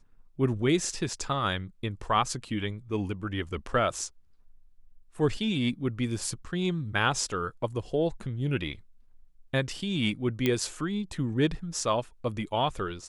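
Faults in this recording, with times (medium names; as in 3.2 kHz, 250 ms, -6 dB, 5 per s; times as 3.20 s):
10.46 s: pop -12 dBFS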